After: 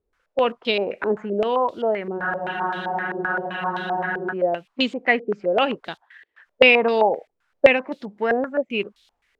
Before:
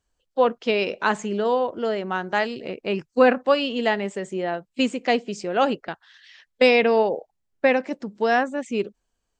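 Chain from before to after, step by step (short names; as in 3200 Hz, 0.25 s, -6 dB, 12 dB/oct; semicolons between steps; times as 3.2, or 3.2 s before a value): added noise violet -47 dBFS; spectral freeze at 2.21, 2.10 s; stepped low-pass 7.7 Hz 430–3700 Hz; gain -2 dB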